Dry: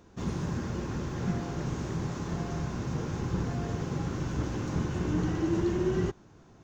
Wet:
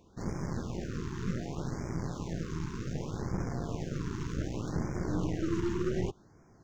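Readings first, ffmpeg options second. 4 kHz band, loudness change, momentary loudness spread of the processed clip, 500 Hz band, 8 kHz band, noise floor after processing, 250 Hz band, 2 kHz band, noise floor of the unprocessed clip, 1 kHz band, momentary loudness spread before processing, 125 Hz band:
-3.5 dB, -3.5 dB, 6 LU, -3.5 dB, no reading, -60 dBFS, -3.5 dB, -4.0 dB, -56 dBFS, -4.5 dB, 6 LU, -4.0 dB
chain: -af "aeval=exprs='0.141*(cos(1*acos(clip(val(0)/0.141,-1,1)))-cos(1*PI/2))+0.02*(cos(6*acos(clip(val(0)/0.141,-1,1)))-cos(6*PI/2))':c=same,afftfilt=real='re*(1-between(b*sr/1024,600*pow(3500/600,0.5+0.5*sin(2*PI*0.66*pts/sr))/1.41,600*pow(3500/600,0.5+0.5*sin(2*PI*0.66*pts/sr))*1.41))':imag='im*(1-between(b*sr/1024,600*pow(3500/600,0.5+0.5*sin(2*PI*0.66*pts/sr))/1.41,600*pow(3500/600,0.5+0.5*sin(2*PI*0.66*pts/sr))*1.41))':win_size=1024:overlap=0.75,volume=0.631"

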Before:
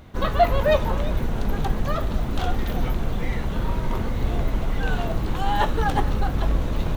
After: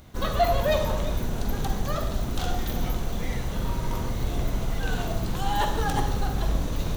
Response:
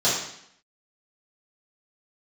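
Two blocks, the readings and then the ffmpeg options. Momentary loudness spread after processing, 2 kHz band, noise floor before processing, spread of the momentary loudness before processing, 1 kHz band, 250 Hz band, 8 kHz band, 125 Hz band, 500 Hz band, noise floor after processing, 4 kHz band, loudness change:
7 LU, -3.5 dB, -27 dBFS, 7 LU, -3.5 dB, -3.5 dB, +6.5 dB, -3.0 dB, -3.5 dB, -30 dBFS, +0.5 dB, -3.0 dB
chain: -filter_complex "[0:a]bass=f=250:g=1,treble=f=4000:g=11,asplit=2[s0][s1];[1:a]atrim=start_sample=2205,adelay=43[s2];[s1][s2]afir=irnorm=-1:irlink=0,volume=0.0841[s3];[s0][s3]amix=inputs=2:normalize=0,volume=0.562"

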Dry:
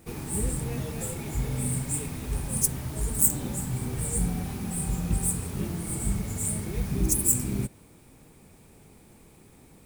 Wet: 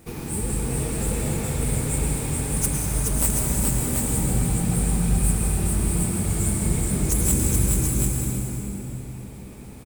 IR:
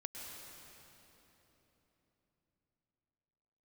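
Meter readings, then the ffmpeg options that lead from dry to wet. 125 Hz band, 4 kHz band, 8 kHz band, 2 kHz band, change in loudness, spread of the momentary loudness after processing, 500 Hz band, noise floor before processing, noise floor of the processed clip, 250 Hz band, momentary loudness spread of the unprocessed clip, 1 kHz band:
+7.0 dB, +7.0 dB, +4.0 dB, +7.0 dB, +5.0 dB, 10 LU, +6.5 dB, -55 dBFS, -38 dBFS, +6.5 dB, 10 LU, +7.0 dB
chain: -filter_complex "[0:a]asplit=2[s0][s1];[s1]acompressor=threshold=0.02:ratio=6,volume=0.891[s2];[s0][s2]amix=inputs=2:normalize=0,aeval=exprs='clip(val(0),-1,0.119)':c=same,aecho=1:1:425|735:0.668|0.562[s3];[1:a]atrim=start_sample=2205[s4];[s3][s4]afir=irnorm=-1:irlink=0,volume=1.41"

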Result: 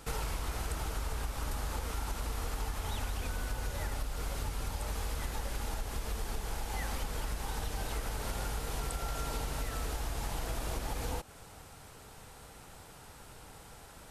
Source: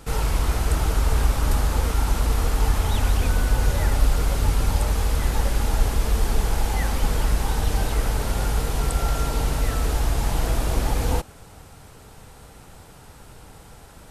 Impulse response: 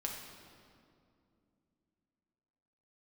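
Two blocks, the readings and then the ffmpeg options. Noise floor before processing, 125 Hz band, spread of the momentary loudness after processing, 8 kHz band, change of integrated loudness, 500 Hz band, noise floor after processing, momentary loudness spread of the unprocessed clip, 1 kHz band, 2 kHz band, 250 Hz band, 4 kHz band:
-47 dBFS, -15.5 dB, 14 LU, -10.0 dB, -14.0 dB, -12.5 dB, -53 dBFS, 2 LU, -11.0 dB, -10.5 dB, -14.0 dB, -10.0 dB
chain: -af "acompressor=threshold=0.0631:ratio=6,lowshelf=f=430:g=-5.5,volume=0.668"

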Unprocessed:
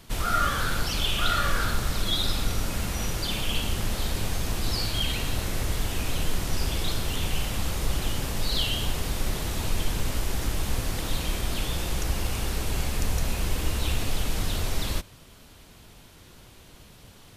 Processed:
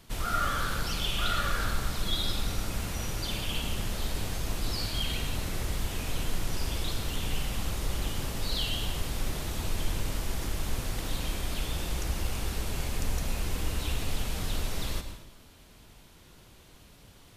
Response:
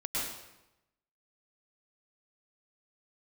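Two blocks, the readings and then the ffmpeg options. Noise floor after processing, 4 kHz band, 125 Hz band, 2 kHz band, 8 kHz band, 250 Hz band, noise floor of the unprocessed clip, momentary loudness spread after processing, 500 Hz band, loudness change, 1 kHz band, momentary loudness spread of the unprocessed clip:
-54 dBFS, -4.5 dB, -4.0 dB, -4.5 dB, -4.5 dB, -4.0 dB, -51 dBFS, 5 LU, -4.5 dB, -4.0 dB, -4.5 dB, 5 LU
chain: -filter_complex "[0:a]asplit=2[s0][s1];[1:a]atrim=start_sample=2205[s2];[s1][s2]afir=irnorm=-1:irlink=0,volume=0.266[s3];[s0][s3]amix=inputs=2:normalize=0,volume=0.473"

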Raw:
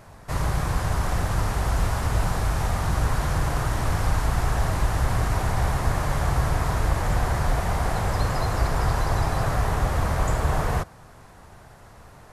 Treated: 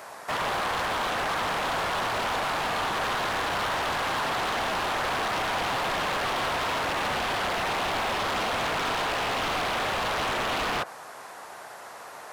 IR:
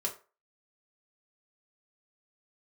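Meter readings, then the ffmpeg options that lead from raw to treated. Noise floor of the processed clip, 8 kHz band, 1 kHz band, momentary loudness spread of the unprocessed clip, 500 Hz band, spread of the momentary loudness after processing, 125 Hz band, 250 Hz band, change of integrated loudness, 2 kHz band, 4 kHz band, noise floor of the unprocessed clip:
-43 dBFS, -2.5 dB, +2.0 dB, 2 LU, 0.0 dB, 6 LU, -18.5 dB, -5.5 dB, -2.0 dB, +4.5 dB, +8.0 dB, -48 dBFS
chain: -filter_complex "[0:a]acrossover=split=3000[s0][s1];[s1]acompressor=threshold=0.00158:ratio=4:attack=1:release=60[s2];[s0][s2]amix=inputs=2:normalize=0,highpass=540,asplit=2[s3][s4];[s4]alimiter=level_in=1.5:limit=0.0631:level=0:latency=1,volume=0.668,volume=0.794[s5];[s3][s5]amix=inputs=2:normalize=0,aeval=exprs='0.0422*(abs(mod(val(0)/0.0422+3,4)-2)-1)':c=same,volume=1.68"

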